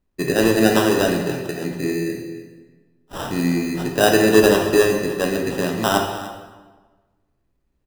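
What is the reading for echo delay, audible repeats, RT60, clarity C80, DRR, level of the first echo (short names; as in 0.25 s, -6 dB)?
0.296 s, 1, 1.4 s, 6.0 dB, 1.5 dB, -16.5 dB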